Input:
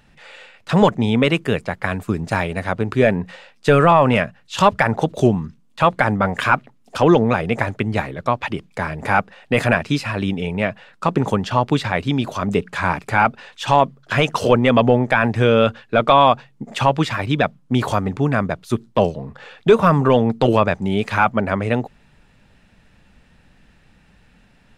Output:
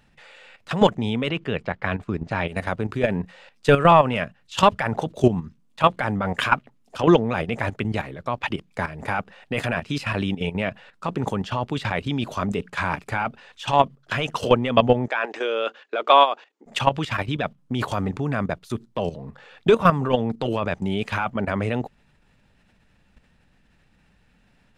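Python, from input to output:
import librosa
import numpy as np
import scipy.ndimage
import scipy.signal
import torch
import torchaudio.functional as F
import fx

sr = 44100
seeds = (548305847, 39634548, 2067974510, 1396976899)

y = fx.lowpass(x, sr, hz=3900.0, slope=12, at=(1.29, 2.48))
y = fx.ellip_bandpass(y, sr, low_hz=350.0, high_hz=7200.0, order=3, stop_db=40, at=(15.08, 16.66))
y = fx.dynamic_eq(y, sr, hz=3000.0, q=3.5, threshold_db=-39.0, ratio=4.0, max_db=5)
y = fx.level_steps(y, sr, step_db=12)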